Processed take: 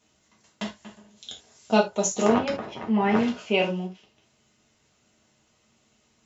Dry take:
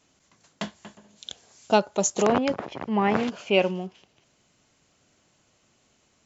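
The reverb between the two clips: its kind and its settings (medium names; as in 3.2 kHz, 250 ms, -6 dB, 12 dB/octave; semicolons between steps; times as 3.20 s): gated-style reverb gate 100 ms falling, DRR -2 dB; trim -4.5 dB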